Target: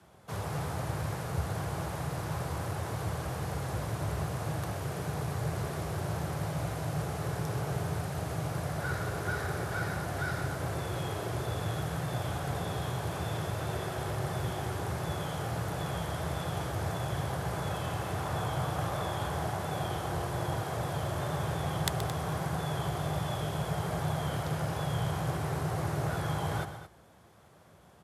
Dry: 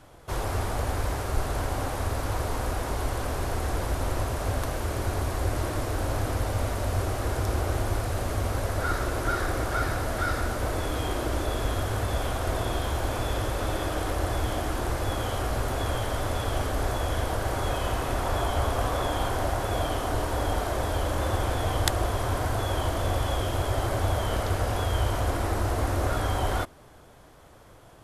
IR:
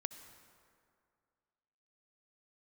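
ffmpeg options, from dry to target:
-af "aeval=exprs='0.596*(cos(1*acos(clip(val(0)/0.596,-1,1)))-cos(1*PI/2))+0.188*(cos(2*acos(clip(val(0)/0.596,-1,1)))-cos(2*PI/2))+0.0237*(cos(4*acos(clip(val(0)/0.596,-1,1)))-cos(4*PI/2))':c=same,aecho=1:1:125|220:0.266|0.237,afreqshift=58,volume=0.447"

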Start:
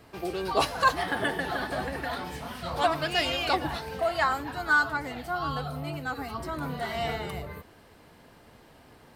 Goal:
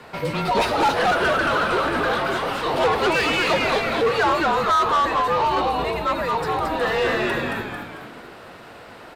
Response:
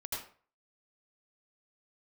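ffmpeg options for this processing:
-filter_complex "[0:a]afreqshift=-210,asplit=7[s0][s1][s2][s3][s4][s5][s6];[s1]adelay=223,afreqshift=-120,volume=0.631[s7];[s2]adelay=446,afreqshift=-240,volume=0.292[s8];[s3]adelay=669,afreqshift=-360,volume=0.133[s9];[s4]adelay=892,afreqshift=-480,volume=0.0617[s10];[s5]adelay=1115,afreqshift=-600,volume=0.0282[s11];[s6]adelay=1338,afreqshift=-720,volume=0.013[s12];[s0][s7][s8][s9][s10][s11][s12]amix=inputs=7:normalize=0,asplit=2[s13][s14];[s14]highpass=f=720:p=1,volume=20,asoftclip=type=tanh:threshold=0.398[s15];[s13][s15]amix=inputs=2:normalize=0,lowpass=f=1900:p=1,volume=0.501,volume=0.794"

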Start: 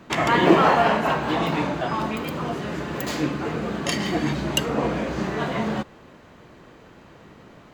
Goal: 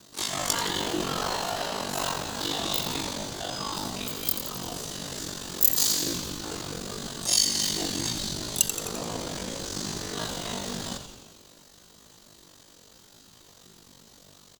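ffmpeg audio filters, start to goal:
-filter_complex "[0:a]highshelf=f=2700:g=4.5,bandreject=f=281.4:t=h:w=4,bandreject=f=562.8:t=h:w=4,alimiter=limit=0.266:level=0:latency=1:release=128,aexciter=amount=11.7:drive=0.9:freq=3500,asplit=2[s0][s1];[s1]asetrate=55563,aresample=44100,atempo=0.793701,volume=0.251[s2];[s0][s2]amix=inputs=2:normalize=0,aeval=exprs='val(0)*sin(2*PI*23*n/s)':c=same,atempo=0.53,asplit=2[s3][s4];[s4]asplit=8[s5][s6][s7][s8][s9][s10][s11][s12];[s5]adelay=86,afreqshift=-99,volume=0.355[s13];[s6]adelay=172,afreqshift=-198,volume=0.224[s14];[s7]adelay=258,afreqshift=-297,volume=0.141[s15];[s8]adelay=344,afreqshift=-396,volume=0.0891[s16];[s9]adelay=430,afreqshift=-495,volume=0.0556[s17];[s10]adelay=516,afreqshift=-594,volume=0.0351[s18];[s11]adelay=602,afreqshift=-693,volume=0.0221[s19];[s12]adelay=688,afreqshift=-792,volume=0.014[s20];[s13][s14][s15][s16][s17][s18][s19][s20]amix=inputs=8:normalize=0[s21];[s3][s21]amix=inputs=2:normalize=0,volume=0.398"

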